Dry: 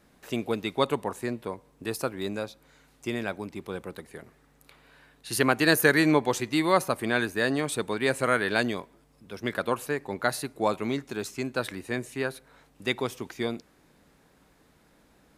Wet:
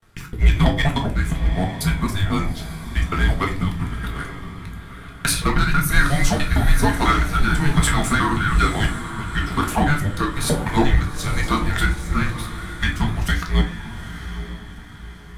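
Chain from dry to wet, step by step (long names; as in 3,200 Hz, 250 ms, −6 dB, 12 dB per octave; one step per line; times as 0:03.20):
reversed piece by piece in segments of 164 ms
high-pass filter 98 Hz 24 dB per octave
parametric band 1,800 Hz +5 dB 1 octave
noise gate with hold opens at −53 dBFS
leveller curve on the samples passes 1
downward compressor 6 to 1, threshold −21 dBFS, peak gain reduction 10.5 dB
rotating-speaker cabinet horn 1.1 Hz
soft clipping −19 dBFS, distortion −17 dB
on a send: feedback delay with all-pass diffusion 861 ms, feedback 42%, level −11 dB
on the sum: rectangular room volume 260 cubic metres, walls furnished, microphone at 1.8 metres
frequency shifter −290 Hz
level +8 dB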